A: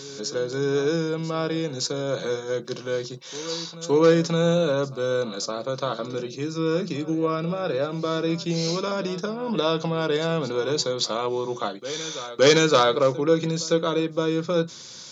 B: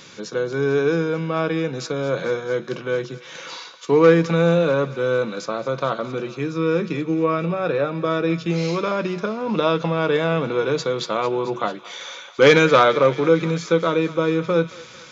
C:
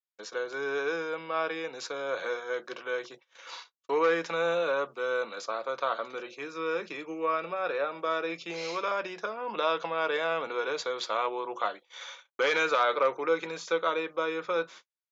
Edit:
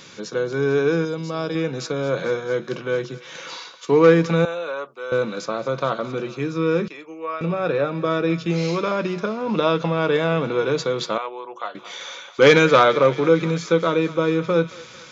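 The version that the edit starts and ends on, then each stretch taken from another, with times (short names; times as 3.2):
B
1.05–1.55 from A
4.45–5.12 from C
6.88–7.41 from C
11.18–11.75 from C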